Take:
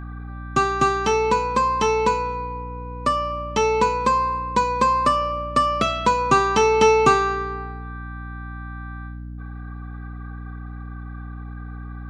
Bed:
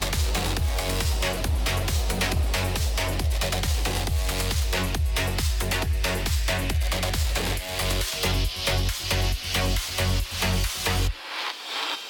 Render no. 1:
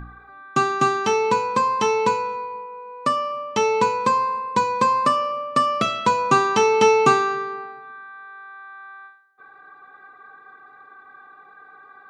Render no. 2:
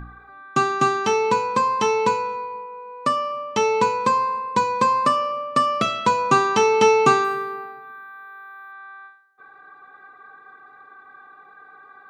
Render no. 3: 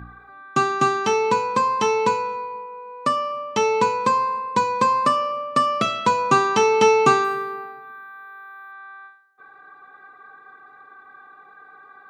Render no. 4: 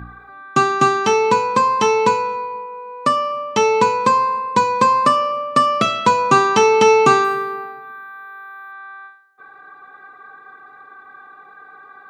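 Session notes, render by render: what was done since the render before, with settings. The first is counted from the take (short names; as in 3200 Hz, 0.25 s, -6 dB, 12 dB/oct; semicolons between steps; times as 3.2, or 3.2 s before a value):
de-hum 60 Hz, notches 11
7.24–8.72 decimation joined by straight lines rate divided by 3×
HPF 60 Hz
gain +4.5 dB; limiter -2 dBFS, peak gain reduction 2.5 dB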